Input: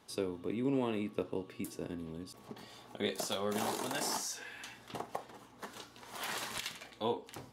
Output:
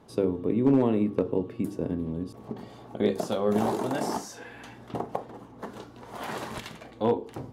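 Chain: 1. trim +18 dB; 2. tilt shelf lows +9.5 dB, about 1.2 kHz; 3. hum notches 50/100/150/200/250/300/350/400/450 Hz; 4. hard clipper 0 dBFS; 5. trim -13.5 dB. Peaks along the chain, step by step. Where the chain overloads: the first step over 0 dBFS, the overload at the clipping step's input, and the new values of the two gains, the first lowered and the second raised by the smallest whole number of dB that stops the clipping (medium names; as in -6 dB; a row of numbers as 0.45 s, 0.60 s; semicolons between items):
-2.5 dBFS, +4.5 dBFS, +3.5 dBFS, 0.0 dBFS, -13.5 dBFS; step 2, 3.5 dB; step 1 +14 dB, step 5 -9.5 dB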